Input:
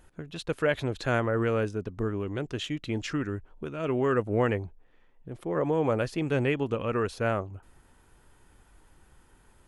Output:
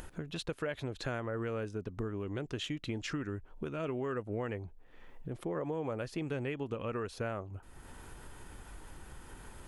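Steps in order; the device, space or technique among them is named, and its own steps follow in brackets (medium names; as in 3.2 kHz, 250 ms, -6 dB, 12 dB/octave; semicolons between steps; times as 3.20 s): upward and downward compression (upward compressor, threshold -38 dBFS; compression 5:1, threshold -34 dBFS, peak gain reduction 13 dB)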